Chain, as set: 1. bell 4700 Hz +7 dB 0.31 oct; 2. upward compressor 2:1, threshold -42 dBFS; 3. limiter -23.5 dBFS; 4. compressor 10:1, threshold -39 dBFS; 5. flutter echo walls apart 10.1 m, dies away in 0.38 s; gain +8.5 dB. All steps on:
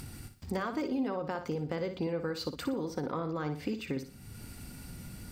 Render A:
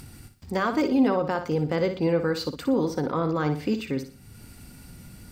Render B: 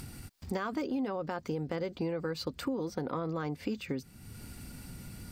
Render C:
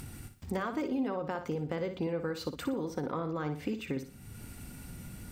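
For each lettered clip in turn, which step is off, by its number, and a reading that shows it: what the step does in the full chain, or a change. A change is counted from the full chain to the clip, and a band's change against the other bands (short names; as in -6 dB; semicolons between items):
4, mean gain reduction 5.5 dB; 5, echo-to-direct -9.0 dB to none; 1, 4 kHz band -3.0 dB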